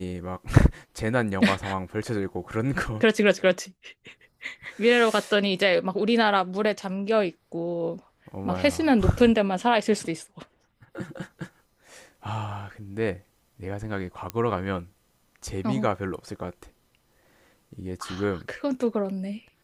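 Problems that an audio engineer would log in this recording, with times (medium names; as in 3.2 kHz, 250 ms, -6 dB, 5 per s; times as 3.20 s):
14.30 s: pop -14 dBFS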